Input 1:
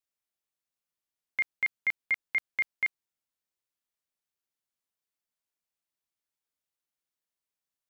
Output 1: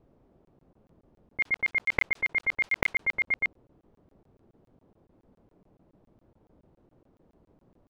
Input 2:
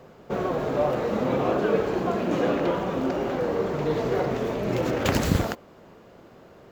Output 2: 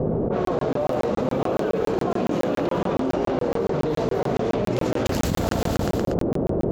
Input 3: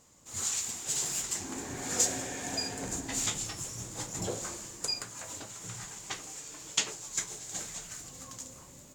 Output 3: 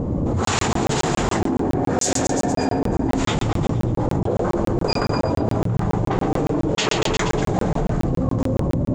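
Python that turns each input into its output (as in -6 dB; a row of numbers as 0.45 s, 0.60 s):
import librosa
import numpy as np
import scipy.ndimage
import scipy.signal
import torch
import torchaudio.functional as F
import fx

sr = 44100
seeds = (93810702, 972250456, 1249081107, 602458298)

p1 = fx.env_lowpass(x, sr, base_hz=400.0, full_db=-20.5)
p2 = fx.peak_eq(p1, sr, hz=1900.0, db=-5.0, octaves=1.5)
p3 = p2 + fx.echo_feedback(p2, sr, ms=119, feedback_pct=51, wet_db=-11, dry=0)
p4 = fx.buffer_crackle(p3, sr, first_s=0.45, period_s=0.14, block=1024, kind='zero')
p5 = fx.env_flatten(p4, sr, amount_pct=100)
y = p5 * 10.0 ** (-6 / 20.0) / np.max(np.abs(p5))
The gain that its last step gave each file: +5.5 dB, -4.5 dB, +6.0 dB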